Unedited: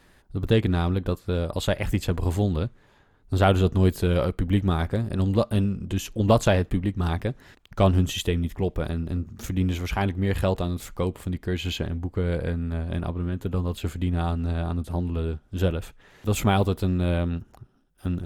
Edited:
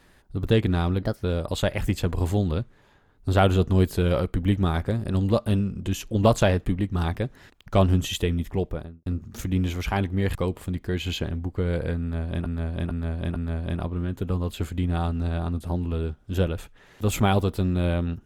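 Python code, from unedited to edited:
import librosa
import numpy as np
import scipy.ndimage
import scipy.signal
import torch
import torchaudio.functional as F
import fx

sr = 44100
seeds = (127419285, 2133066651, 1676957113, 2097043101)

y = fx.studio_fade_out(x, sr, start_s=8.6, length_s=0.51)
y = fx.edit(y, sr, fx.speed_span(start_s=1.02, length_s=0.26, speed=1.23),
    fx.cut(start_s=10.4, length_s=0.54),
    fx.repeat(start_s=12.6, length_s=0.45, count=4), tone=tone)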